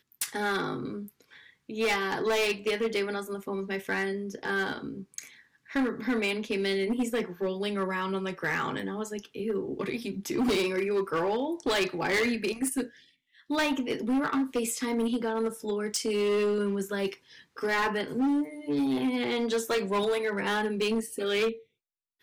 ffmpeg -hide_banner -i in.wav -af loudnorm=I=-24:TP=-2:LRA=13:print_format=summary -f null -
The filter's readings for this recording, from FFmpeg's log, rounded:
Input Integrated:    -29.4 LUFS
Input True Peak:     -19.6 dBTP
Input LRA:             2.4 LU
Input Threshold:     -39.8 LUFS